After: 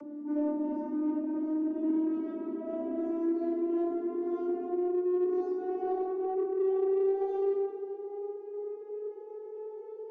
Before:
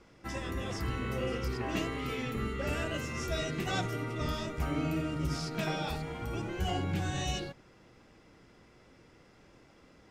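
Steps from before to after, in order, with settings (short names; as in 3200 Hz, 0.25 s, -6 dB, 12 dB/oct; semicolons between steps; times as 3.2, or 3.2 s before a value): vocoder on a gliding note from D4, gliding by +7 st; high shelf 6200 Hz -10 dB; reverse; compressor 10:1, threshold -46 dBFS, peak gain reduction 20 dB; reverse; band shelf 2500 Hz -12 dB 2.4 oct; reverb RT60 2.1 s, pre-delay 3 ms, DRR -8 dB; in parallel at -10 dB: soft clip -27 dBFS, distortion -10 dB; on the sum: upward compressor, threshold -34 dBFS; gain -7.5 dB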